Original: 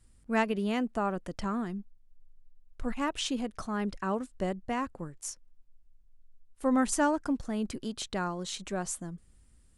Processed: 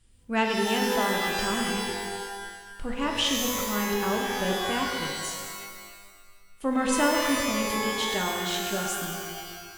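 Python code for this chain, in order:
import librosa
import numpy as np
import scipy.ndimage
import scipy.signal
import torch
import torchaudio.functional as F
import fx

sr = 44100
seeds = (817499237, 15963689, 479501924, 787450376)

y = fx.peak_eq(x, sr, hz=3100.0, db=9.0, octaves=0.69)
y = fx.rev_shimmer(y, sr, seeds[0], rt60_s=1.6, semitones=12, shimmer_db=-2, drr_db=1.0)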